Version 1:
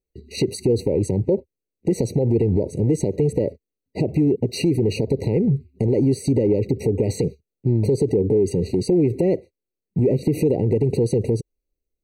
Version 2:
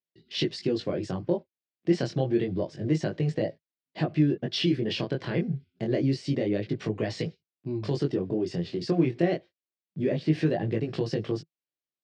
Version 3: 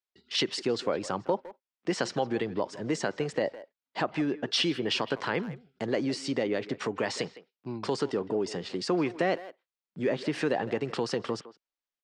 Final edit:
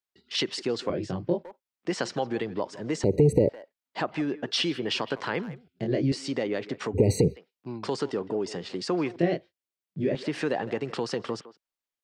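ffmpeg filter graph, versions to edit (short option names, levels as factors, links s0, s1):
-filter_complex "[1:a]asplit=3[s0][s1][s2];[0:a]asplit=2[s3][s4];[2:a]asplit=6[s5][s6][s7][s8][s9][s10];[s5]atrim=end=0.902[s11];[s0]atrim=start=0.898:end=1.442[s12];[s6]atrim=start=1.438:end=3.042[s13];[s3]atrim=start=3.038:end=3.492[s14];[s7]atrim=start=3.488:end=5.682[s15];[s1]atrim=start=5.678:end=6.122[s16];[s8]atrim=start=6.118:end=6.97[s17];[s4]atrim=start=6.93:end=7.38[s18];[s9]atrim=start=7.34:end=9.162[s19];[s2]atrim=start=9.158:end=10.152[s20];[s10]atrim=start=10.148[s21];[s11][s12]acrossfade=d=0.004:c1=hsin:c2=hsin[s22];[s22][s13]acrossfade=d=0.004:c1=hsin:c2=hsin[s23];[s23][s14]acrossfade=d=0.004:c1=hsin:c2=hsin[s24];[s24][s15]acrossfade=d=0.004:c1=hsin:c2=hsin[s25];[s25][s16]acrossfade=d=0.004:c1=hsin:c2=hsin[s26];[s26][s17]acrossfade=d=0.004:c1=hsin:c2=hsin[s27];[s27][s18]acrossfade=d=0.04:c1=tri:c2=tri[s28];[s28][s19]acrossfade=d=0.04:c1=tri:c2=tri[s29];[s29][s20]acrossfade=d=0.004:c1=hsin:c2=hsin[s30];[s30][s21]acrossfade=d=0.004:c1=hsin:c2=hsin"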